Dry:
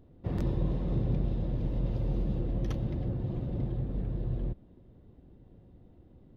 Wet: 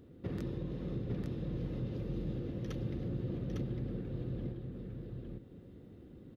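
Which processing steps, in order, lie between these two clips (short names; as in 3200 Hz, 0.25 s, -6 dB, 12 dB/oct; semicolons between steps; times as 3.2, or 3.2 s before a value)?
compressor 2.5:1, threshold -40 dBFS, peak gain reduction 11 dB; HPF 170 Hz 6 dB/oct; band shelf 790 Hz -8.5 dB 1 oct; echo 0.854 s -3.5 dB; gain +5.5 dB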